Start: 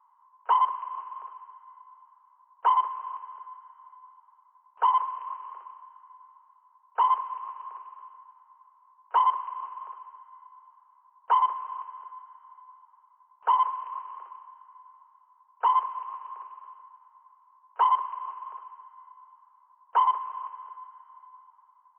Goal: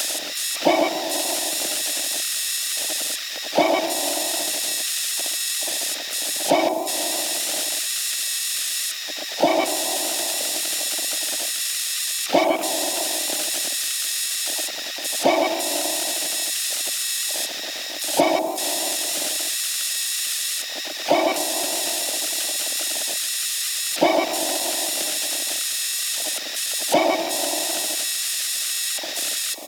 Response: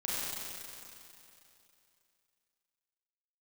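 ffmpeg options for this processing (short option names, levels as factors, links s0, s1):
-filter_complex "[0:a]aeval=exprs='val(0)+0.5*0.0126*sgn(val(0))':c=same,highshelf=f=2100:g=9,asplit=2[s0][s1];[1:a]atrim=start_sample=2205,adelay=69[s2];[s1][s2]afir=irnorm=-1:irlink=0,volume=0.126[s3];[s0][s3]amix=inputs=2:normalize=0,asetrate=32667,aresample=44100,equalizer=f=620:t=o:w=0.35:g=10,acontrast=54,asuperstop=centerf=1200:order=12:qfactor=0.67,asplit=2[s4][s5];[s5]adelay=143,lowpass=f=1100:p=1,volume=0.316,asplit=2[s6][s7];[s7]adelay=143,lowpass=f=1100:p=1,volume=0.4,asplit=2[s8][s9];[s9]adelay=143,lowpass=f=1100:p=1,volume=0.4,asplit=2[s10][s11];[s11]adelay=143,lowpass=f=1100:p=1,volume=0.4[s12];[s4][s6][s8][s10][s12]amix=inputs=5:normalize=0,aexciter=amount=2.5:drive=4.3:freq=2400,asplit=2[s13][s14];[s14]acompressor=threshold=0.0282:ratio=6,volume=1.26[s15];[s13][s15]amix=inputs=2:normalize=0,afwtdn=0.0355,asplit=3[s16][s17][s18];[s17]asetrate=22050,aresample=44100,atempo=2,volume=0.562[s19];[s18]asetrate=58866,aresample=44100,atempo=0.749154,volume=0.398[s20];[s16][s19][s20]amix=inputs=3:normalize=0,volume=1.26"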